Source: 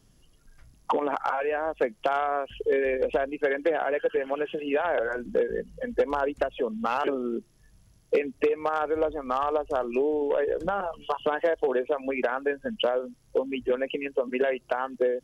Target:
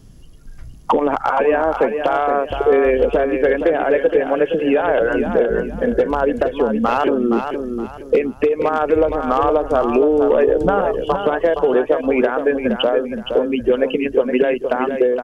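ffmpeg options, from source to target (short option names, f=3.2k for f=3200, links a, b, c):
-af "lowshelf=f=410:g=9.5,alimiter=limit=-14.5dB:level=0:latency=1:release=478,aecho=1:1:468|936|1404|1872:0.447|0.13|0.0376|0.0109,volume=8.5dB"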